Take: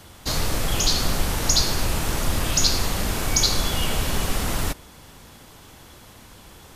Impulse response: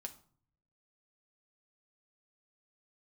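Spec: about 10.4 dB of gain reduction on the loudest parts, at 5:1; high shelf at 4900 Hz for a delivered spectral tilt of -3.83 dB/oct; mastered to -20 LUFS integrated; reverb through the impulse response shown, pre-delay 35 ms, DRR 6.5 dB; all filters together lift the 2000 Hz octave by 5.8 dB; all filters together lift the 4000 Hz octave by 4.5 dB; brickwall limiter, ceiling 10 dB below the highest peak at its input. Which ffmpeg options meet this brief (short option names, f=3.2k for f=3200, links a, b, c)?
-filter_complex "[0:a]equalizer=f=2k:t=o:g=6.5,equalizer=f=4k:t=o:g=7.5,highshelf=f=4.9k:g=-7.5,acompressor=threshold=-24dB:ratio=5,alimiter=limit=-23.5dB:level=0:latency=1,asplit=2[a][b];[1:a]atrim=start_sample=2205,adelay=35[c];[b][c]afir=irnorm=-1:irlink=0,volume=-3dB[d];[a][d]amix=inputs=2:normalize=0,volume=13.5dB"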